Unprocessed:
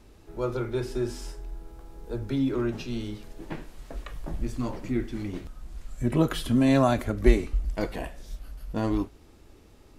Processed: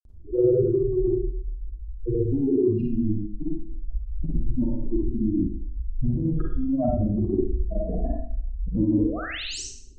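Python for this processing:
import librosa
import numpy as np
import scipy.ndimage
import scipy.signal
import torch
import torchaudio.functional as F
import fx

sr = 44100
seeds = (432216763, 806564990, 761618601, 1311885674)

y = fx.spec_expand(x, sr, power=3.6)
y = fx.env_lowpass_down(y, sr, base_hz=1100.0, full_db=-24.0)
y = fx.peak_eq(y, sr, hz=2000.0, db=-15.0, octaves=1.9)
y = fx.over_compress(y, sr, threshold_db=-29.0, ratio=-1.0)
y = fx.spec_paint(y, sr, seeds[0], shape='rise', start_s=8.91, length_s=0.74, low_hz=230.0, high_hz=8900.0, level_db=-42.0)
y = fx.granulator(y, sr, seeds[1], grain_ms=100.0, per_s=20.0, spray_ms=100.0, spread_st=0)
y = fx.rev_schroeder(y, sr, rt60_s=0.55, comb_ms=38, drr_db=-1.5)
y = y * 10.0 ** (6.5 / 20.0)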